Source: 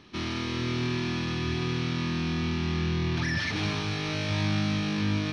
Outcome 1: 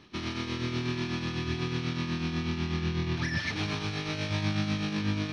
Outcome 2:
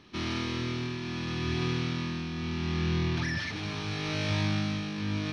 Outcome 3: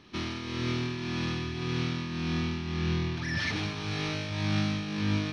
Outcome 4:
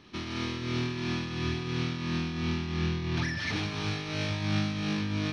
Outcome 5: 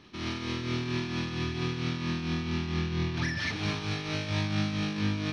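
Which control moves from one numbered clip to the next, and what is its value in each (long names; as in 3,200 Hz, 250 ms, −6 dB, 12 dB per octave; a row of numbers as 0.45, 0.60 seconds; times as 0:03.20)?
shaped tremolo, speed: 8.1, 0.76, 1.8, 2.9, 4.4 Hertz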